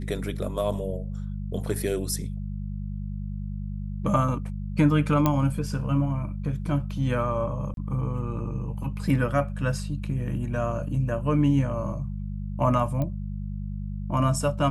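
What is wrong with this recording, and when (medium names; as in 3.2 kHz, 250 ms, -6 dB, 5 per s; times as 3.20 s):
hum 50 Hz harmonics 4 -32 dBFS
5.26 s: pop -9 dBFS
7.74–7.77 s: dropout 32 ms
13.02 s: pop -18 dBFS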